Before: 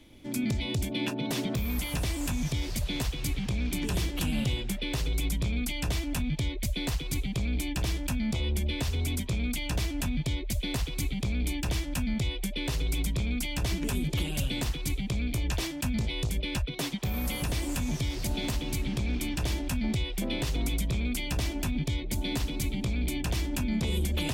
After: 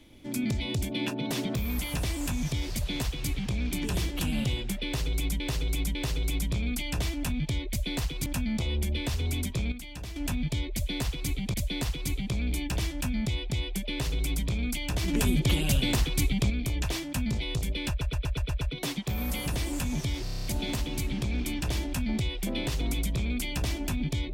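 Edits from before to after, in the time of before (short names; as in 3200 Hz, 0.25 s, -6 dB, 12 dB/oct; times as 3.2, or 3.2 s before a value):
4.85–5.4 loop, 3 plays
7.16–8 cut
9.46–9.9 gain -9.5 dB
10.47–11.28 loop, 2 plays
12.18–12.43 loop, 2 plays
13.76–15.18 gain +5 dB
16.57 stutter 0.12 s, 7 plays
18.2 stutter 0.03 s, 8 plays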